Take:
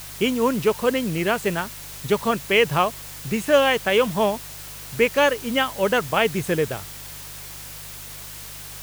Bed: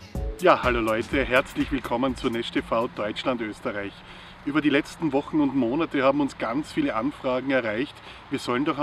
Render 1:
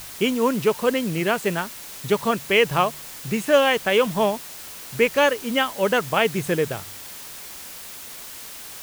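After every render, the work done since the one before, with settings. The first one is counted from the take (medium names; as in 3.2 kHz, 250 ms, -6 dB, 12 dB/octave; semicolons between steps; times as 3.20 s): de-hum 50 Hz, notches 3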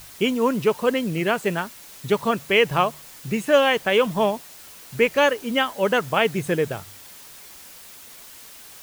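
noise reduction 6 dB, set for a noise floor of -38 dBFS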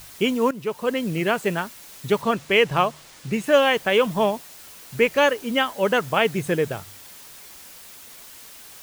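0.51–1.10 s: fade in linear, from -13.5 dB; 2.22–3.44 s: median filter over 3 samples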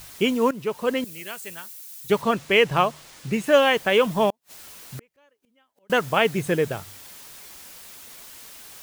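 1.04–2.10 s: pre-emphasis filter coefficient 0.9; 4.30–5.90 s: inverted gate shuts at -25 dBFS, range -42 dB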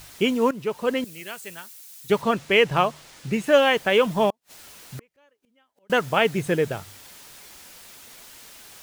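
treble shelf 10 kHz -5 dB; band-stop 1.1 kHz, Q 27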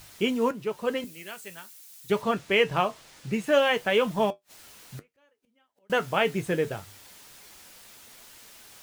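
flange 0.24 Hz, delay 9 ms, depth 1.5 ms, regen -63%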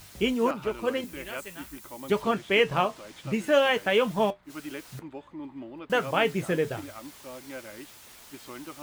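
add bed -17.5 dB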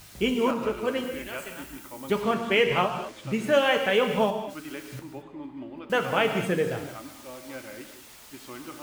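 gated-style reverb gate 250 ms flat, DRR 5.5 dB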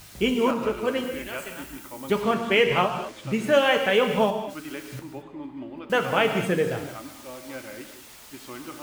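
trim +2 dB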